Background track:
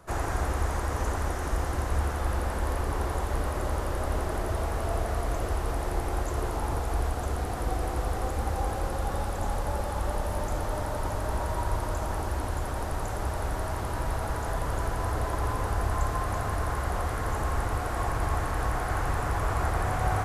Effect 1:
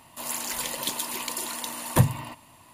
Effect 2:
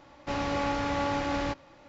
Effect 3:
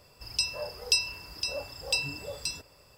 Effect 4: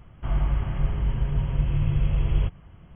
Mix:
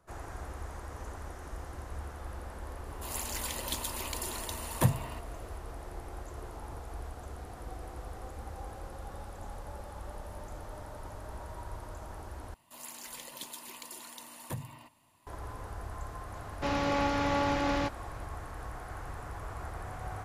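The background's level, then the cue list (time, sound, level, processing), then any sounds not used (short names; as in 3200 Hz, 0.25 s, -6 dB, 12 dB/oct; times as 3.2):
background track -13.5 dB
2.85 add 1 -6.5 dB
12.54 replace with 1 -14 dB + limiter -13.5 dBFS
16.35 add 2
not used: 3, 4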